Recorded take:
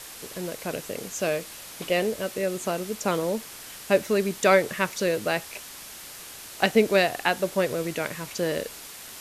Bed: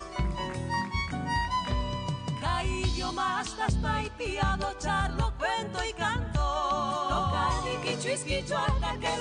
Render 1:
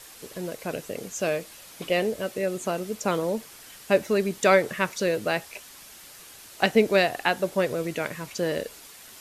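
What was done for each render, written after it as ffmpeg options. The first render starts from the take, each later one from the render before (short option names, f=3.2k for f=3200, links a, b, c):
-af "afftdn=nr=6:nf=-42"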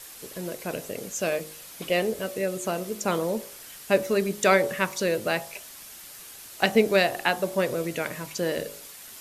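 -af "highshelf=f=9.7k:g=7,bandreject=f=51.74:t=h:w=4,bandreject=f=103.48:t=h:w=4,bandreject=f=155.22:t=h:w=4,bandreject=f=206.96:t=h:w=4,bandreject=f=258.7:t=h:w=4,bandreject=f=310.44:t=h:w=4,bandreject=f=362.18:t=h:w=4,bandreject=f=413.92:t=h:w=4,bandreject=f=465.66:t=h:w=4,bandreject=f=517.4:t=h:w=4,bandreject=f=569.14:t=h:w=4,bandreject=f=620.88:t=h:w=4,bandreject=f=672.62:t=h:w=4,bandreject=f=724.36:t=h:w=4,bandreject=f=776.1:t=h:w=4,bandreject=f=827.84:t=h:w=4,bandreject=f=879.58:t=h:w=4,bandreject=f=931.32:t=h:w=4,bandreject=f=983.06:t=h:w=4,bandreject=f=1.0348k:t=h:w=4,bandreject=f=1.08654k:t=h:w=4,bandreject=f=1.13828k:t=h:w=4,bandreject=f=1.19002k:t=h:w=4,bandreject=f=1.24176k:t=h:w=4"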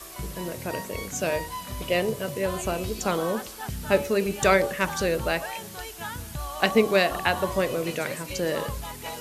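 -filter_complex "[1:a]volume=-6.5dB[a];[0:a][a]amix=inputs=2:normalize=0"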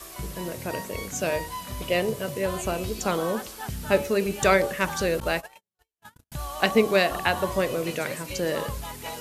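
-filter_complex "[0:a]asettb=1/sr,asplit=3[a][b][c];[a]atrim=end=5.204[d];[b]atrim=start=5.2:end=6.32,asetpts=PTS-STARTPTS,afade=t=in:d=0.004:c=qsin,afade=t=out:st=1.116:d=0.004:c=qsin,agate=range=-56dB:threshold=-32dB:ratio=16:release=100:detection=peak[e];[c]atrim=start=6.316[f];[d][e]acrossfade=d=0.004:c1=hsin:c2=qsin[g];[g][f]acrossfade=d=0.004:c1=qsin:c2=hsin"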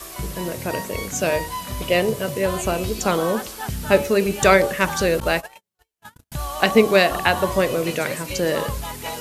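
-af "volume=5.5dB,alimiter=limit=-1dB:level=0:latency=1"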